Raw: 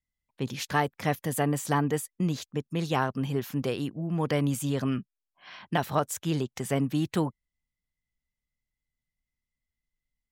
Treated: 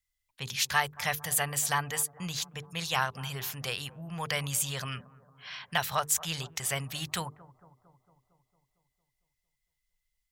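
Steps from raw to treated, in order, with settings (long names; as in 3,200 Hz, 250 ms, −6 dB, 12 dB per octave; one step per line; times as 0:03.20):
guitar amp tone stack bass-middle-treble 10-0-10
mains-hum notches 50/100/150/200/250/300/350/400/450 Hz
on a send: bucket-brigade delay 227 ms, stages 2,048, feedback 62%, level −19 dB
on the sum: level +8.5 dB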